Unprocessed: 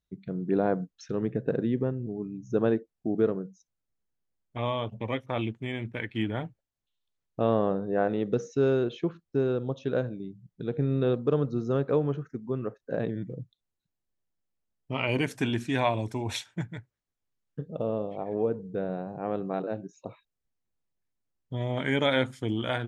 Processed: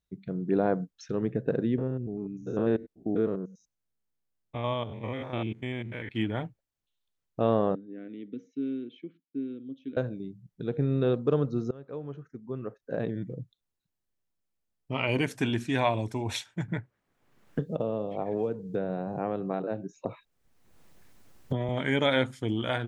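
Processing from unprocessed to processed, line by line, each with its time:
0:01.78–0:06.09: spectrum averaged block by block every 100 ms
0:07.75–0:09.97: formant filter i
0:11.71–0:13.22: fade in, from −23.5 dB
0:16.68–0:21.69: multiband upward and downward compressor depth 100%

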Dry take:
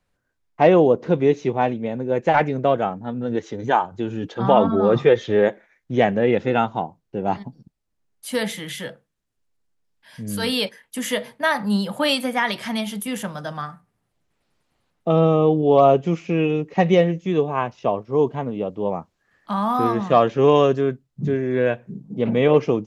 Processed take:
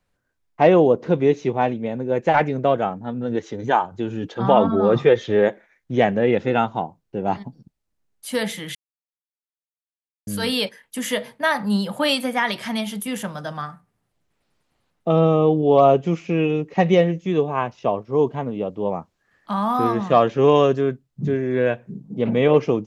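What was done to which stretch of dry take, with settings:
0:08.75–0:10.27: silence

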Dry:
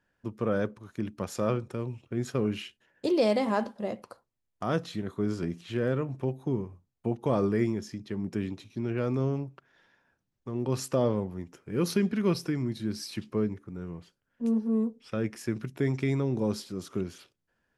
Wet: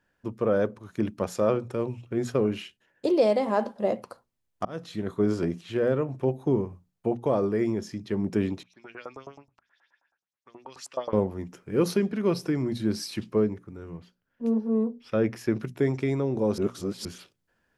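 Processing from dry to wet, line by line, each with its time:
0:04.65–0:05.10: fade in
0:08.63–0:11.13: auto-filter band-pass saw up 9.4 Hz 750–7,500 Hz
0:13.97–0:15.60: parametric band 8,400 Hz −8.5 dB
0:16.58–0:17.05: reverse
whole clip: mains-hum notches 60/120/180/240 Hz; dynamic equaliser 580 Hz, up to +7 dB, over −41 dBFS, Q 0.74; speech leveller within 4 dB 0.5 s

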